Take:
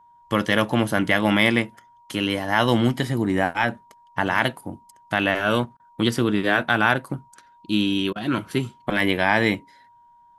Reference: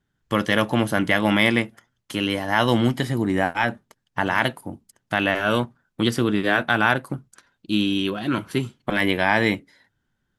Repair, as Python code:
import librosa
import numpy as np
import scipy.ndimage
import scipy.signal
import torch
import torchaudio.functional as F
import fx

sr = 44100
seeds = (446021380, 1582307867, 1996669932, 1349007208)

y = fx.notch(x, sr, hz=950.0, q=30.0)
y = fx.fix_interpolate(y, sr, at_s=(5.77, 8.13), length_ms=26.0)